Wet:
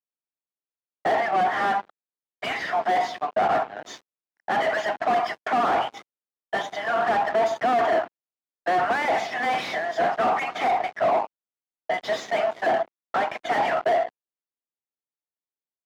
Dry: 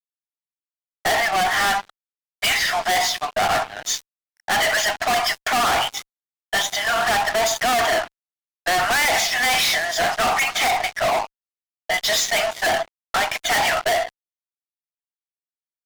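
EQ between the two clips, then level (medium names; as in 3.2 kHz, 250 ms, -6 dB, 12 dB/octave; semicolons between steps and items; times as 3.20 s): high-pass 280 Hz 12 dB/octave; low-pass 1.1 kHz 6 dB/octave; tilt EQ -2.5 dB/octave; 0.0 dB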